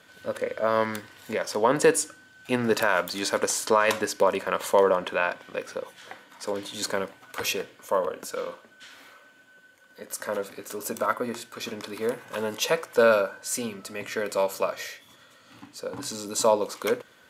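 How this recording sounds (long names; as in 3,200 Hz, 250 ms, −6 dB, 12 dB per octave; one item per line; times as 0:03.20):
background noise floor −56 dBFS
spectral slope −2.5 dB per octave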